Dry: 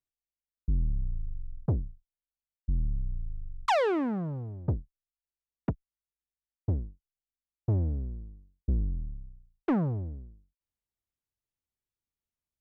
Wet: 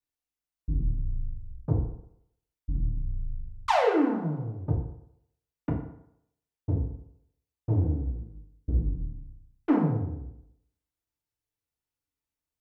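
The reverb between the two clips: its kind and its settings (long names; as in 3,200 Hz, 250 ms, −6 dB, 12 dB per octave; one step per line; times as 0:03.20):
feedback delay network reverb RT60 0.74 s, low-frequency decay 0.85×, high-frequency decay 0.65×, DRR −3.5 dB
level −3 dB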